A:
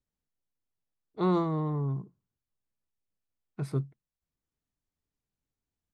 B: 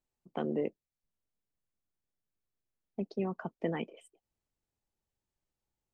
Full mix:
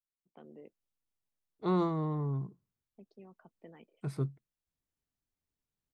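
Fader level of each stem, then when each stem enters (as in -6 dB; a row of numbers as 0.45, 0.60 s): -3.0, -20.0 dB; 0.45, 0.00 s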